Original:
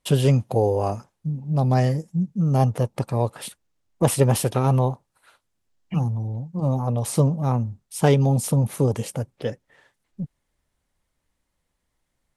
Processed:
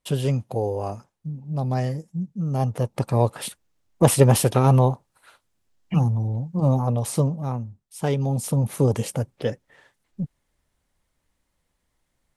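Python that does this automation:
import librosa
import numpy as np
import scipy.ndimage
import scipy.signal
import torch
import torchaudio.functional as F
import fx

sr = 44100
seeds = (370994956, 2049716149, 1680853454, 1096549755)

y = fx.gain(x, sr, db=fx.line((2.57, -5.0), (3.15, 3.0), (6.72, 3.0), (7.83, -9.0), (8.95, 2.0)))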